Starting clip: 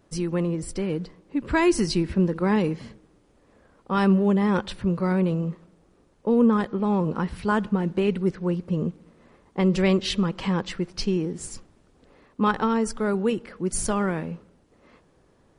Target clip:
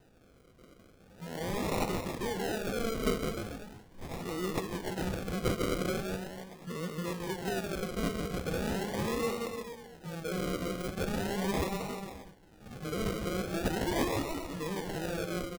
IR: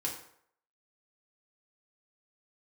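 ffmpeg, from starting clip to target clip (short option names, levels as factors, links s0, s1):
-filter_complex "[0:a]areverse,acrossover=split=420|1400[s0][s1][s2];[s0]acompressor=threshold=0.0112:ratio=5[s3];[s1]asoftclip=type=tanh:threshold=0.0224[s4];[s3][s4][s2]amix=inputs=3:normalize=0,aecho=1:1:160|304|433.6|550.2|655.2:0.631|0.398|0.251|0.158|0.1,acrusher=samples=39:mix=1:aa=0.000001:lfo=1:lforange=23.4:lforate=0.4,asplit=2[s5][s6];[1:a]atrim=start_sample=2205,asetrate=70560,aresample=44100[s7];[s6][s7]afir=irnorm=-1:irlink=0,volume=0.355[s8];[s5][s8]amix=inputs=2:normalize=0,volume=0.631"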